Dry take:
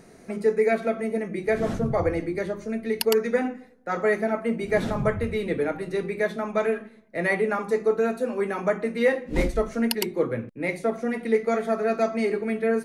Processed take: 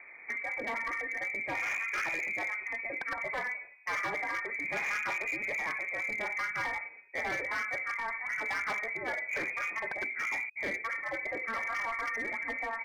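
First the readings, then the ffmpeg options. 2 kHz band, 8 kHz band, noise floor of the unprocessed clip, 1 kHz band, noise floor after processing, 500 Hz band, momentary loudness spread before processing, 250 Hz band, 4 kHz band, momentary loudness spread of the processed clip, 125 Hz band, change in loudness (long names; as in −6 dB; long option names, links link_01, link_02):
+1.5 dB, −8.5 dB, −51 dBFS, −5.0 dB, −51 dBFS, −20.0 dB, 6 LU, −22.0 dB, −10.0 dB, 3 LU, −22.5 dB, −7.5 dB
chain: -af "afftfilt=real='re*lt(hypot(re,im),0.251)':imag='im*lt(hypot(re,im),0.251)':win_size=1024:overlap=0.75,lowpass=frequency=2100:width_type=q:width=0.5098,lowpass=frequency=2100:width_type=q:width=0.6013,lowpass=frequency=2100:width_type=q:width=0.9,lowpass=frequency=2100:width_type=q:width=2.563,afreqshift=-2500,asoftclip=type=hard:threshold=-29dB"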